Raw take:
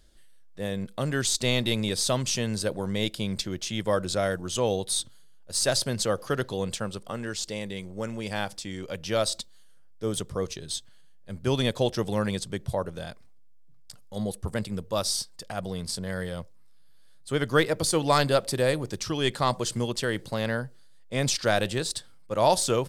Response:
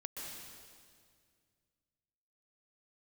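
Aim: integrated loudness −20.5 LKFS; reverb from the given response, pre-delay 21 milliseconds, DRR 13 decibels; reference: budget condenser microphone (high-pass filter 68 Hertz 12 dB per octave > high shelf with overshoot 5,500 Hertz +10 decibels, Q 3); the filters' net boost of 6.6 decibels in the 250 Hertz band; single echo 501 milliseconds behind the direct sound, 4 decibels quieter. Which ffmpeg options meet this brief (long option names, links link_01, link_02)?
-filter_complex "[0:a]equalizer=frequency=250:width_type=o:gain=8.5,aecho=1:1:501:0.631,asplit=2[link_01][link_02];[1:a]atrim=start_sample=2205,adelay=21[link_03];[link_02][link_03]afir=irnorm=-1:irlink=0,volume=-12dB[link_04];[link_01][link_04]amix=inputs=2:normalize=0,highpass=68,highshelf=frequency=5500:width_type=q:width=3:gain=10,volume=-0.5dB"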